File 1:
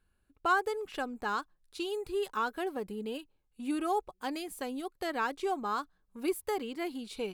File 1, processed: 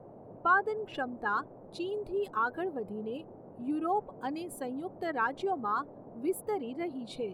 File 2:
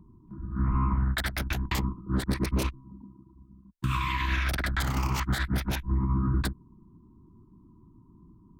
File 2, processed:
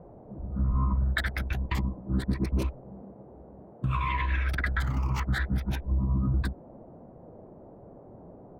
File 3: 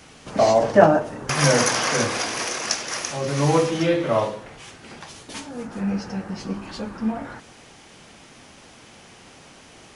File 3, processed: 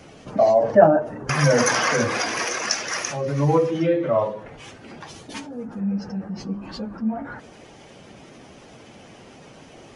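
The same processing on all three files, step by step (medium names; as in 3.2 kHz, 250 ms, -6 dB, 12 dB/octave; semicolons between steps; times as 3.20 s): spectral contrast enhancement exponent 1.5; band noise 98–690 Hz -50 dBFS; dynamic bell 1.8 kHz, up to +4 dB, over -42 dBFS, Q 1.1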